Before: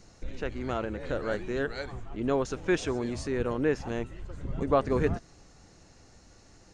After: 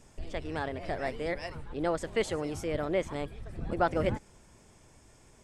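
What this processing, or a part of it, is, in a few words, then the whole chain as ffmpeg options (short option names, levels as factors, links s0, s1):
nightcore: -af "asetrate=54684,aresample=44100,volume=0.75"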